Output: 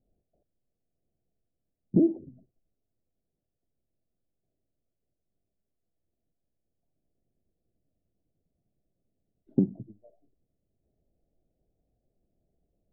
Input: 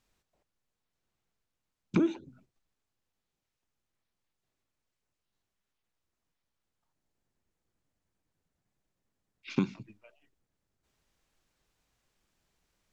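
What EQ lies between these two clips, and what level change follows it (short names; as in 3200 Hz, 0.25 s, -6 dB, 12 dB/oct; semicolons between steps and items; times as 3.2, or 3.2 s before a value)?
elliptic low-pass 690 Hz, stop band 40 dB; air absorption 440 m; +5.5 dB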